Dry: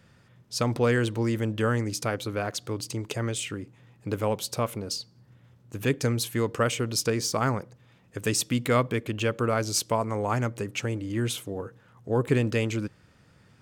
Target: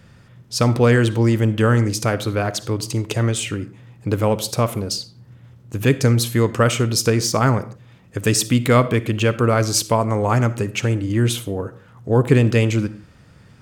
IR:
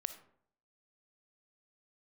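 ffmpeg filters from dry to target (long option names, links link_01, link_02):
-filter_complex "[0:a]asplit=2[link_01][link_02];[1:a]atrim=start_sample=2205,afade=type=out:start_time=0.23:duration=0.01,atrim=end_sample=10584,lowshelf=frequency=180:gain=8.5[link_03];[link_02][link_03]afir=irnorm=-1:irlink=0,volume=5.5dB[link_04];[link_01][link_04]amix=inputs=2:normalize=0,volume=-1dB"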